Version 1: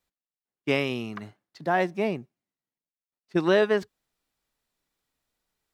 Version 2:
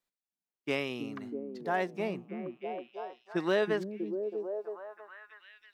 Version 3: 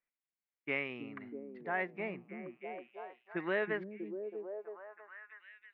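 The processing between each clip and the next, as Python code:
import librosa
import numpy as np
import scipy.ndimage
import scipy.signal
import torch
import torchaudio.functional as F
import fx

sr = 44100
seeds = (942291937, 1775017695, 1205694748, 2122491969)

y1 = np.clip(x, -10.0 ** (-11.5 / 20.0), 10.0 ** (-11.5 / 20.0))
y1 = fx.peak_eq(y1, sr, hz=61.0, db=-14.0, octaves=1.7)
y1 = fx.echo_stepped(y1, sr, ms=322, hz=210.0, octaves=0.7, feedback_pct=70, wet_db=-1.0)
y1 = y1 * 10.0 ** (-6.5 / 20.0)
y2 = fx.ladder_lowpass(y1, sr, hz=2400.0, resonance_pct=60)
y2 = y2 * 10.0 ** (3.5 / 20.0)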